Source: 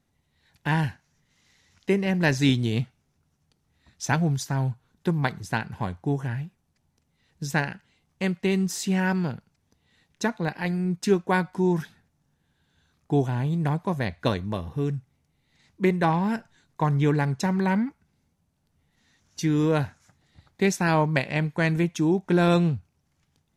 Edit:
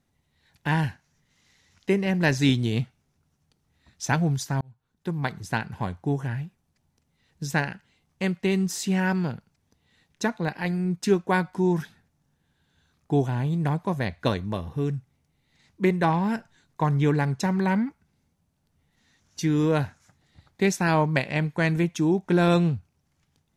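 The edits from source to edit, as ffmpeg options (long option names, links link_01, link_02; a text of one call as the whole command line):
ffmpeg -i in.wav -filter_complex "[0:a]asplit=2[link_01][link_02];[link_01]atrim=end=4.61,asetpts=PTS-STARTPTS,afade=type=out:start_time=4.606:duration=0.004:curve=hsin[link_03];[link_02]atrim=start=4.61,asetpts=PTS-STARTPTS,afade=type=in:duration=0.87[link_04];[link_03][link_04]concat=n=2:v=0:a=1" out.wav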